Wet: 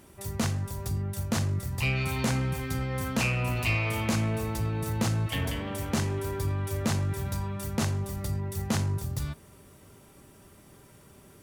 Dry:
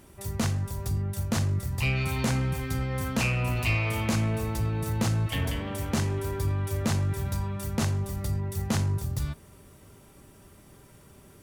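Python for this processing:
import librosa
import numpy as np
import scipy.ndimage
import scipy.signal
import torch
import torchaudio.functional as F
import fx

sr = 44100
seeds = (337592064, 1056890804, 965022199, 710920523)

y = fx.low_shelf(x, sr, hz=63.0, db=-7.0)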